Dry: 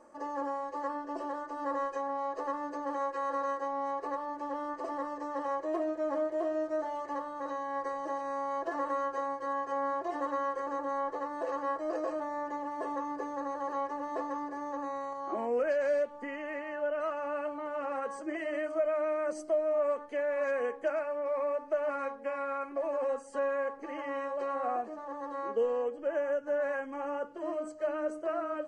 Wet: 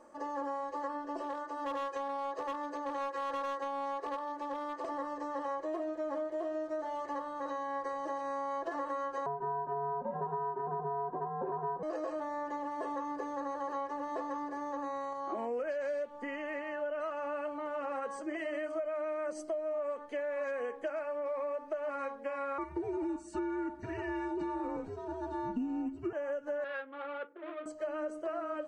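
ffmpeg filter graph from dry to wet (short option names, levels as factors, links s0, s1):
-filter_complex "[0:a]asettb=1/sr,asplit=3[s0][s1][s2];[s0]atrim=end=1.224[s3];[s1]atrim=start=1.22:end=4.88,asetpts=PTS-STARTPTS,afade=t=in:d=0.004:c=qsin,afade=t=out:st=3.656:d=0.004:c=qsin,highpass=f=220:p=1,asoftclip=type=hard:threshold=0.0316[s4];[s2]atrim=start=4.876[s5];[s3][s4]acrossfade=d=0.004:c1=hsin:c2=qsin[s6];[s6][s5]acrossfade=d=0.004:c1=qsin:c2=hsin,asettb=1/sr,asplit=3[s7][s8][s9];[s7]atrim=end=9.264[s10];[s8]atrim=start=9.26:end=11.83,asetpts=PTS-STARTPTS,afade=t=in:d=0.004:c=qsin,afade=t=out:st=2.566:d=0.004:c=qsin,lowpass=f=1100:t=q:w=1.9,afreqshift=-130[s11];[s9]atrim=start=11.826[s12];[s10][s11]acrossfade=d=0.004:c1=hsin:c2=qsin[s13];[s13][s12]acrossfade=d=0.004:c1=qsin:c2=hsin,asettb=1/sr,asplit=3[s14][s15][s16];[s14]atrim=end=22.584[s17];[s15]atrim=start=22.58:end=26.13,asetpts=PTS-STARTPTS,afade=t=in:d=0.004:c=qsin,afade=t=out:st=3.546:d=0.004:c=qsin,aecho=1:1:2:0.5,atrim=end_sample=156555,afreqshift=-210[s18];[s16]atrim=start=26.126[s19];[s17][s18]acrossfade=d=0.004:c1=hsin:c2=qsin[s20];[s20][s19]acrossfade=d=0.004:c1=qsin:c2=hsin,asettb=1/sr,asplit=3[s21][s22][s23];[s21]atrim=end=26.644[s24];[s22]atrim=start=26.64:end=27.66,asetpts=PTS-STARTPTS,afade=t=in:d=0.004:c=qsin,afade=t=out:st=1.016:d=0.004:c=qsin,adynamicsmooth=sensitivity=5.5:basefreq=620,highpass=470,equalizer=f=670:t=q:w=4:g=-9,equalizer=f=960:t=q:w=4:g=-9,equalizer=f=1400:t=q:w=4:g=6,lowpass=f=3100:w=0.5412,lowpass=f=3100:w=1.3066[s25];[s23]atrim=start=27.656[s26];[s24][s25]acrossfade=d=0.004:c1=hsin:c2=qsin[s27];[s27][s26]acrossfade=d=0.004:c1=qsin:c2=hsin,equalizer=f=3500:t=o:w=0.45:g=4,acompressor=threshold=0.0224:ratio=6"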